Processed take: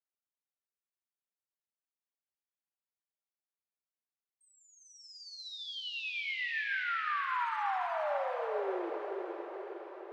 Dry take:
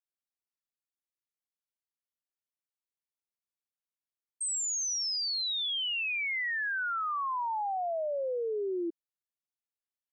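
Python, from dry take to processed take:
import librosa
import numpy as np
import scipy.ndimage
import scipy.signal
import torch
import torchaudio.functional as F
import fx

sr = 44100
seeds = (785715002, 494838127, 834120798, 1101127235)

p1 = fx.high_shelf(x, sr, hz=2900.0, db=-7.0)
p2 = fx.dereverb_blind(p1, sr, rt60_s=1.8)
p3 = fx.air_absorb(p2, sr, metres=340.0)
p4 = np.clip(p3, -10.0 ** (-32.5 / 20.0), 10.0 ** (-32.5 / 20.0))
p5 = fx.highpass(p4, sr, hz=500.0, slope=6)
p6 = p5 + fx.echo_diffused(p5, sr, ms=484, feedback_pct=61, wet_db=-4.5, dry=0)
y = fx.room_shoebox(p6, sr, seeds[0], volume_m3=2000.0, walls='mixed', distance_m=1.2)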